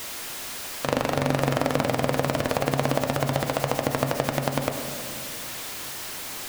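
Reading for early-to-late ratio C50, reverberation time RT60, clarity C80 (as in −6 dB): 6.5 dB, 2.1 s, 7.5 dB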